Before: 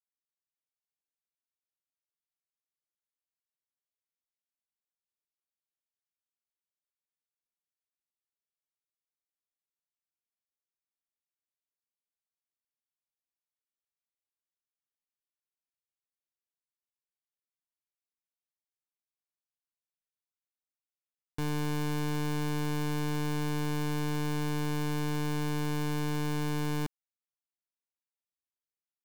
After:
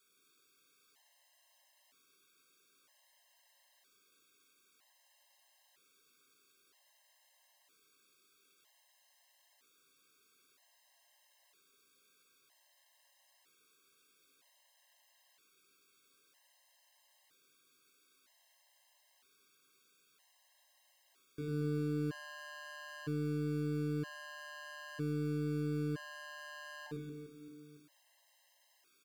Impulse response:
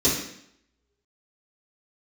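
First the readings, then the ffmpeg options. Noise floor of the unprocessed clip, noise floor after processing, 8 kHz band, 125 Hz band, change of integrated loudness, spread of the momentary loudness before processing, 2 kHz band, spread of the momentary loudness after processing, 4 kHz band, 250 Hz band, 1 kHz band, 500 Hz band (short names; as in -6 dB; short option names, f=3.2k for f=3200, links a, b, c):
under -85 dBFS, -72 dBFS, -13.0 dB, -7.0 dB, -7.0 dB, 1 LU, -6.5 dB, 13 LU, -11.0 dB, -5.5 dB, -14.5 dB, -4.5 dB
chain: -filter_complex "[0:a]aeval=exprs='if(lt(val(0),0),0.251*val(0),val(0))':c=same,alimiter=level_in=16dB:limit=-24dB:level=0:latency=1,volume=-16dB,asplit=2[a][b];[b]highpass=f=720:p=1,volume=34dB,asoftclip=type=tanh:threshold=-40dB[c];[a][c]amix=inputs=2:normalize=0,lowpass=f=6.7k:p=1,volume=-6dB,aecho=1:1:100|230|399|618.7|904.3:0.631|0.398|0.251|0.158|0.1,asplit=2[d][e];[1:a]atrim=start_sample=2205,lowpass=3.8k,lowshelf=f=200:g=-5[f];[e][f]afir=irnorm=-1:irlink=0,volume=-18dB[g];[d][g]amix=inputs=2:normalize=0,afftfilt=real='re*gt(sin(2*PI*0.52*pts/sr)*(1-2*mod(floor(b*sr/1024/540),2)),0)':imag='im*gt(sin(2*PI*0.52*pts/sr)*(1-2*mod(floor(b*sr/1024/540),2)),0)':win_size=1024:overlap=0.75,volume=3.5dB"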